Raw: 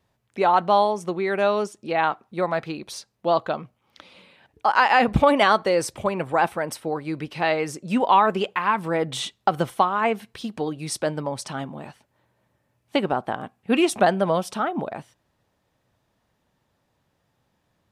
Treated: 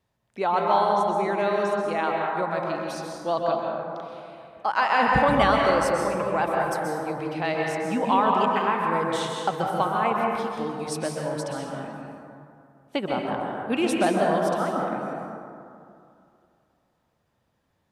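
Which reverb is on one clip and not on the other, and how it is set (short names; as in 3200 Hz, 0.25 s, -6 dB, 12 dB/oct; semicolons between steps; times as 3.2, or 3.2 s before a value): plate-style reverb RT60 2.5 s, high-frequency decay 0.35×, pre-delay 0.115 s, DRR -1 dB; gain -5.5 dB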